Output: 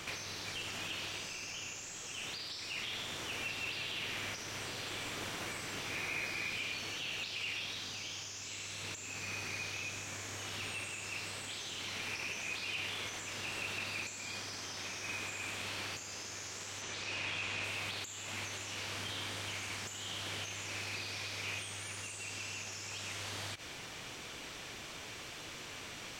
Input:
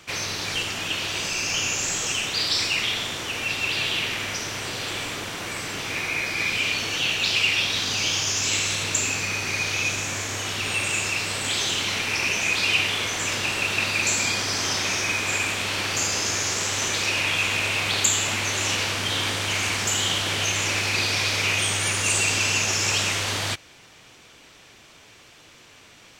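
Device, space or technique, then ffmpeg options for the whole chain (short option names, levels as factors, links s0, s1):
de-esser from a sidechain: -filter_complex "[0:a]asettb=1/sr,asplit=3[s0][s1][s2];[s0]atrim=end=16.824[s3];[s1]atrim=start=16.82:end=17.64,asetpts=PTS-STARTPTS,afade=t=in:d=0.004:c=qsin,afade=t=out:st=0.816:d=0.004:c=qsin,lowpass=7000[s4];[s2]atrim=start=17.636[s5];[s3][s4]acrossfade=d=0.004:c1=hsin:c2=qsin[s6];[s6][s5]acrossfade=d=0.004:c1=qsin:c2=hsin,asplit=2[s7][s8];[s8]highpass=5100,apad=whole_len=1155005[s9];[s7][s9]sidechaincompress=threshold=0.00355:ratio=10:attack=1.3:release=56,volume=1.5"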